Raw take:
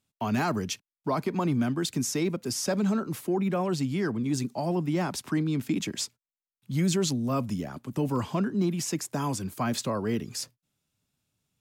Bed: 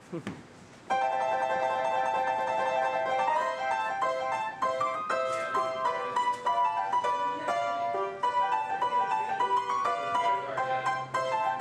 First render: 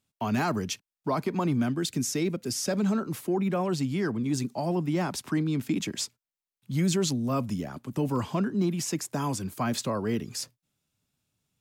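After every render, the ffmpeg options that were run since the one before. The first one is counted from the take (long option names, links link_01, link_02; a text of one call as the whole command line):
ffmpeg -i in.wav -filter_complex "[0:a]asettb=1/sr,asplit=3[link_01][link_02][link_03];[link_01]atrim=end=1.704[link_04];[link_02]atrim=start=1.7:end=2.74,asetpts=PTS-STARTPTS,afade=type=in:duration=0.004:curve=qsin,afade=type=out:start_time=1.036:duration=0.004:curve=qsin,equalizer=frequency=970:width_type=o:width=0.77:gain=-6[link_05];[link_03]atrim=start=2.736[link_06];[link_04][link_05]acrossfade=duration=0.004:curve1=hsin:curve2=qsin[link_07];[link_07][link_06]acrossfade=duration=0.004:curve1=qsin:curve2=hsin" out.wav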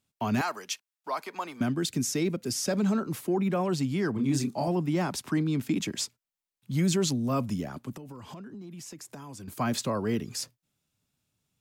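ffmpeg -i in.wav -filter_complex "[0:a]asettb=1/sr,asplit=3[link_01][link_02][link_03];[link_01]atrim=end=0.414[link_04];[link_02]atrim=start=0.41:end=1.61,asetpts=PTS-STARTPTS,afade=type=in:duration=0.004:curve=qsin,afade=type=out:start_time=1.196:duration=0.004:curve=qsin,highpass=750[link_05];[link_03]atrim=start=1.606[link_06];[link_04][link_05]acrossfade=duration=0.004:curve1=hsin:curve2=qsin[link_07];[link_07][link_06]acrossfade=duration=0.004:curve1=qsin:curve2=hsin,asettb=1/sr,asplit=3[link_08][link_09][link_10];[link_08]atrim=end=4.134[link_11];[link_09]atrim=start=4.13:end=4.68,asetpts=PTS-STARTPTS,afade=type=in:duration=0.004:curve=qsin,afade=type=out:start_time=0.546:duration=0.004:curve=qsin,asplit=2[link_12][link_13];[link_13]adelay=29,volume=-4dB[link_14];[link_12][link_14]amix=inputs=2:normalize=0,atrim=end_sample=24255[link_15];[link_10]atrim=start=4.676[link_16];[link_11][link_15]acrossfade=duration=0.004:curve1=hsin:curve2=qsin[link_17];[link_17][link_16]acrossfade=duration=0.004:curve1=qsin:curve2=hsin,asettb=1/sr,asplit=3[link_18][link_19][link_20];[link_18]atrim=end=7.934[link_21];[link_19]atrim=start=7.93:end=9.48,asetpts=PTS-STARTPTS,afade=type=in:duration=0.004:curve=qsin,afade=type=out:start_time=1.546:duration=0.004:curve=qsin,acompressor=threshold=-39dB:ratio=20:attack=3.2:release=140:knee=1:detection=peak[link_22];[link_20]atrim=start=9.476[link_23];[link_21][link_22]acrossfade=duration=0.004:curve1=hsin:curve2=qsin[link_24];[link_24][link_23]acrossfade=duration=0.004:curve1=qsin:curve2=hsin" out.wav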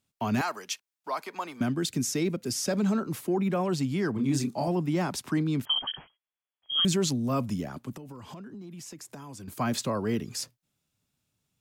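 ffmpeg -i in.wav -filter_complex "[0:a]asettb=1/sr,asplit=3[link_01][link_02][link_03];[link_01]atrim=end=5.654[link_04];[link_02]atrim=start=5.65:end=6.85,asetpts=PTS-STARTPTS,afade=type=in:duration=0.004:curve=qsin,afade=type=out:start_time=1.196:duration=0.004:curve=qsin,lowpass=frequency=2900:width_type=q:width=0.5098,lowpass=frequency=2900:width_type=q:width=0.6013,lowpass=frequency=2900:width_type=q:width=0.9,lowpass=frequency=2900:width_type=q:width=2.563,afreqshift=-3400[link_05];[link_03]atrim=start=6.846[link_06];[link_04][link_05]acrossfade=duration=0.004:curve1=hsin:curve2=qsin[link_07];[link_07][link_06]acrossfade=duration=0.004:curve1=qsin:curve2=hsin" out.wav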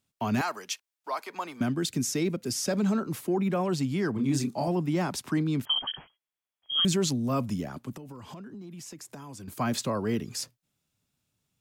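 ffmpeg -i in.wav -filter_complex "[0:a]asettb=1/sr,asplit=3[link_01][link_02][link_03];[link_01]atrim=end=0.704[link_04];[link_02]atrim=start=0.7:end=1.3,asetpts=PTS-STARTPTS,afade=type=in:duration=0.004:curve=qsin,afade=type=out:start_time=0.596:duration=0.004:curve=qsin,equalizer=frequency=160:width=1.5:gain=-14[link_05];[link_03]atrim=start=1.296[link_06];[link_04][link_05]acrossfade=duration=0.004:curve1=hsin:curve2=qsin[link_07];[link_07][link_06]acrossfade=duration=0.004:curve1=qsin:curve2=hsin" out.wav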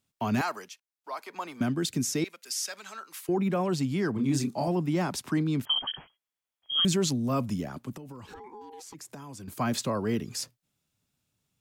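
ffmpeg -i in.wav -filter_complex "[0:a]asettb=1/sr,asplit=3[link_01][link_02][link_03];[link_01]atrim=end=2.244[link_04];[link_02]atrim=start=2.24:end=3.29,asetpts=PTS-STARTPTS,afade=type=in:duration=0.004:curve=qsin,afade=type=out:start_time=1.046:duration=0.004:curve=qsin,highpass=1400[link_05];[link_03]atrim=start=3.286[link_06];[link_04][link_05]acrossfade=duration=0.004:curve1=hsin:curve2=qsin[link_07];[link_07][link_06]acrossfade=duration=0.004:curve1=qsin:curve2=hsin,asplit=3[link_08][link_09][link_10];[link_08]afade=type=out:start_time=8.26:duration=0.02[link_11];[link_09]aeval=exprs='val(0)*sin(2*PI*630*n/s)':channel_layout=same,afade=type=in:start_time=8.26:duration=0.02,afade=type=out:start_time=8.93:duration=0.02[link_12];[link_10]afade=type=in:start_time=8.93:duration=0.02[link_13];[link_11][link_12][link_13]amix=inputs=3:normalize=0,asplit=2[link_14][link_15];[link_14]atrim=end=0.69,asetpts=PTS-STARTPTS,afade=type=out:start_time=0.686:duration=0.004:curve=hsin:silence=0.199526[link_16];[link_15]atrim=start=0.69,asetpts=PTS-STARTPTS,afade=type=in:duration=0.9:silence=0.199526[link_17];[link_16][link_17]concat=n=2:v=0:a=1" out.wav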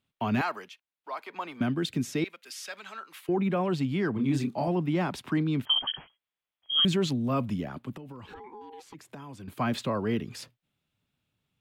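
ffmpeg -i in.wav -af "highshelf=frequency=4400:width_type=q:width=1.5:gain=-9" out.wav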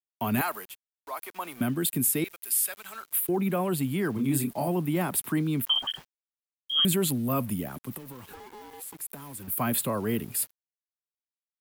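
ffmpeg -i in.wav -af "aexciter=amount=13.9:drive=8.7:freq=8800,aeval=exprs='val(0)*gte(abs(val(0)),0.00501)':channel_layout=same" out.wav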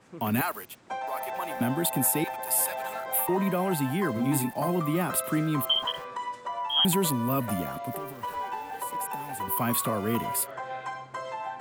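ffmpeg -i in.wav -i bed.wav -filter_complex "[1:a]volume=-6.5dB[link_01];[0:a][link_01]amix=inputs=2:normalize=0" out.wav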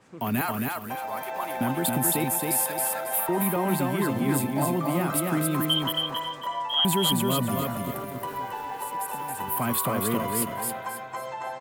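ffmpeg -i in.wav -af "aecho=1:1:272|544|816|1088:0.708|0.227|0.0725|0.0232" out.wav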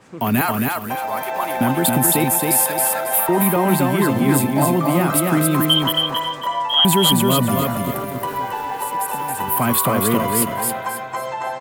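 ffmpeg -i in.wav -af "volume=8.5dB,alimiter=limit=-3dB:level=0:latency=1" out.wav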